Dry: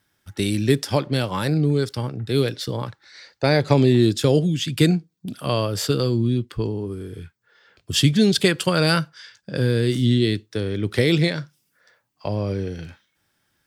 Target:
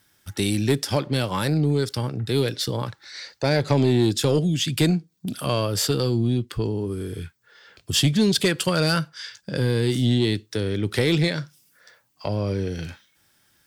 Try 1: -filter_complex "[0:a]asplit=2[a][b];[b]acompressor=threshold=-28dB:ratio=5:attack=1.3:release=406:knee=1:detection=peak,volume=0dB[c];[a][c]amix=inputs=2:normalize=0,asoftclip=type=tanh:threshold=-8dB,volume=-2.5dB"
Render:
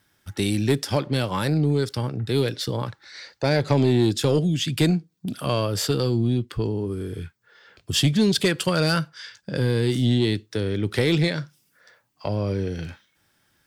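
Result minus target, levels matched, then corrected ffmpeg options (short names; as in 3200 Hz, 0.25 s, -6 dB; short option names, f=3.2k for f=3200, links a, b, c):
8000 Hz band -2.5 dB
-filter_complex "[0:a]asplit=2[a][b];[b]acompressor=threshold=-28dB:ratio=5:attack=1.3:release=406:knee=1:detection=peak,highshelf=f=2.9k:g=10.5[c];[a][c]amix=inputs=2:normalize=0,asoftclip=type=tanh:threshold=-8dB,volume=-2.5dB"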